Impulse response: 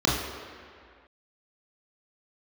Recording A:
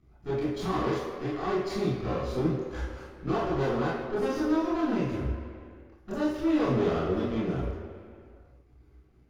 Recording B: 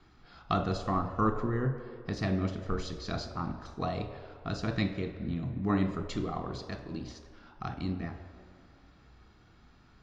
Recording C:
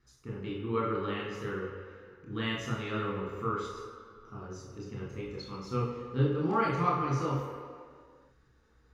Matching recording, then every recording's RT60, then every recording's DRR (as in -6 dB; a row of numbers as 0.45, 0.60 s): C; 2.1, 2.1, 2.1 s; -9.0, 5.0, -5.0 dB